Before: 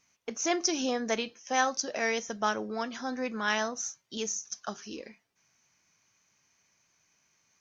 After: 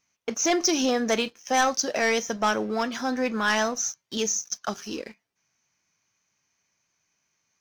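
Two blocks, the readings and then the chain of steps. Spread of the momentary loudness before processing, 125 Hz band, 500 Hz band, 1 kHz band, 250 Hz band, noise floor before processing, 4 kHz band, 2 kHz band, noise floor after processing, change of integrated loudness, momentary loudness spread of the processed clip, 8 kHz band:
12 LU, +7.0 dB, +6.5 dB, +5.5 dB, +7.0 dB, -73 dBFS, +6.0 dB, +5.5 dB, -77 dBFS, +6.0 dB, 10 LU, n/a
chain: sample leveller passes 2

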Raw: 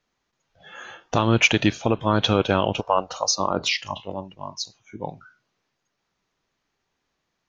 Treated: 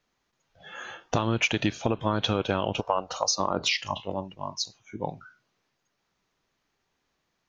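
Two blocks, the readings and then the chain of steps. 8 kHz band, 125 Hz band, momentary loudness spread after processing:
n/a, -5.5 dB, 12 LU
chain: compressor 5:1, threshold -21 dBFS, peak gain reduction 9.5 dB

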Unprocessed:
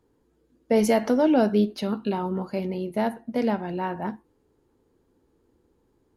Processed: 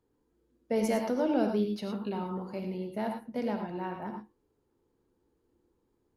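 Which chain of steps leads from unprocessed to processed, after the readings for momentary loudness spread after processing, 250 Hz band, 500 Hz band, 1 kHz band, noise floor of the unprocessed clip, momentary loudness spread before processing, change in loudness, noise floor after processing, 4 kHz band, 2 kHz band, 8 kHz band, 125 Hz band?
9 LU, -7.5 dB, -7.5 dB, -7.5 dB, -68 dBFS, 10 LU, -7.5 dB, -76 dBFS, -7.5 dB, -8.0 dB, n/a, -7.0 dB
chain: non-linear reverb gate 0.13 s rising, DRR 4.5 dB; gain -9 dB

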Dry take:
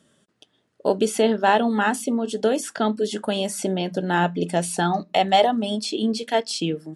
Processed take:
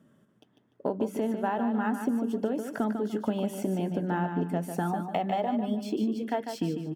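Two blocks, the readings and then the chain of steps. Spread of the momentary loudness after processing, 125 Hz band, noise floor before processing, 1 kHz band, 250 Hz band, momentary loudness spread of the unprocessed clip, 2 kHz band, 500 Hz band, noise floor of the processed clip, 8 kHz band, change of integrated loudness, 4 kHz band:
3 LU, -4.0 dB, -69 dBFS, -10.0 dB, -4.0 dB, 7 LU, -12.5 dB, -9.5 dB, -67 dBFS, -17.5 dB, -7.5 dB, -19.0 dB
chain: ten-band EQ 125 Hz +7 dB, 250 Hz +7 dB, 1000 Hz +4 dB, 4000 Hz -11 dB, 8000 Hz -6 dB; compressor, threshold -21 dBFS, peak gain reduction 11.5 dB; feedback echo 0.148 s, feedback 30%, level -7.5 dB; decimation joined by straight lines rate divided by 2×; gain -5 dB

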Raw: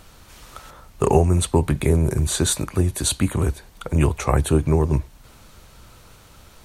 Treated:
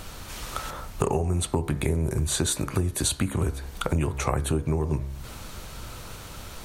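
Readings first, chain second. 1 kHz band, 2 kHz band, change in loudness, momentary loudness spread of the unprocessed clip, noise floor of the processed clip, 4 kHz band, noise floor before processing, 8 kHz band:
-5.0 dB, -2.5 dB, -6.5 dB, 7 LU, -41 dBFS, -3.0 dB, -49 dBFS, -3.5 dB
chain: de-hum 67.97 Hz, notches 34; compressor 6:1, threshold -31 dBFS, peak gain reduction 19 dB; gain +8 dB

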